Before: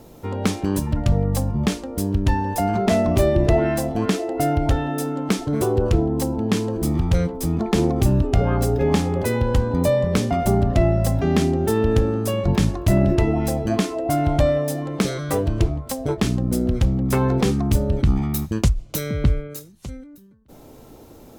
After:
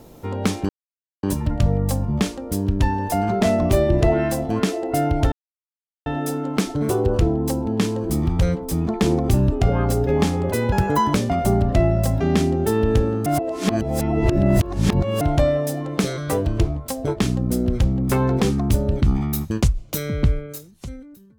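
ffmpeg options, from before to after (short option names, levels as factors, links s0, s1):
-filter_complex "[0:a]asplit=7[s0][s1][s2][s3][s4][s5][s6];[s0]atrim=end=0.69,asetpts=PTS-STARTPTS,afade=t=out:st=0.686:d=0.004:c=hsin,apad=pad_dur=0.54[s7];[s1]atrim=start=0.69:end=4.78,asetpts=PTS-STARTPTS,afade=t=in:d=0.004:c=hsin,afade=t=out:st=4.086:d=0.004:c=hsin,apad=pad_dur=0.74[s8];[s2]atrim=start=4.78:end=9.444,asetpts=PTS-STARTPTS,afade=t=in:d=0.004:c=hsin[s9];[s3]atrim=start=9.44:end=10.15,asetpts=PTS-STARTPTS,asetrate=74529,aresample=44100,atrim=end_sample=18527,asetpts=PTS-STARTPTS[s10];[s4]atrim=start=10.146:end=12.272[s11];[s5]atrim=start=12.268:end=14.222,asetpts=PTS-STARTPTS,areverse[s12];[s6]atrim=start=14.218[s13];[s7][s8][s9]concat=n=3:v=0:a=1[s14];[s14][s10]acrossfade=d=0.004:c1=hsin:c2=hsin[s15];[s15][s11]acrossfade=d=0.004:c1=hsin:c2=hsin[s16];[s16][s12]acrossfade=d=0.004:c1=hsin:c2=hsin[s17];[s17][s13]acrossfade=d=0.004:c1=hsin:c2=hsin"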